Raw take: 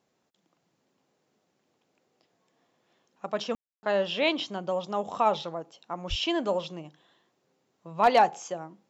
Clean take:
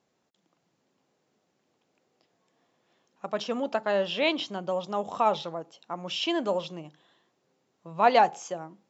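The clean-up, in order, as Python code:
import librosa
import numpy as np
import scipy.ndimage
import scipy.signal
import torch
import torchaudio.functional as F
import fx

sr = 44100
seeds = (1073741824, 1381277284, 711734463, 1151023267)

y = fx.fix_declip(x, sr, threshold_db=-11.5)
y = fx.fix_deplosive(y, sr, at_s=(6.09,))
y = fx.fix_ambience(y, sr, seeds[0], print_start_s=1.15, print_end_s=1.65, start_s=3.55, end_s=3.83)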